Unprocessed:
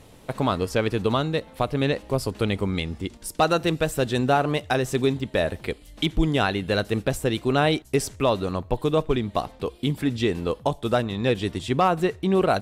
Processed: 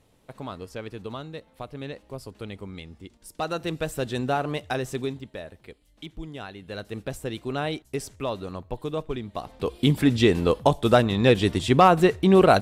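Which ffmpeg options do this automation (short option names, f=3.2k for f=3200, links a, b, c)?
-af "volume=15.5dB,afade=t=in:st=3.18:d=0.69:silence=0.398107,afade=t=out:st=4.83:d=0.6:silence=0.281838,afade=t=in:st=6.56:d=0.57:silence=0.398107,afade=t=in:st=9.41:d=0.43:silence=0.237137"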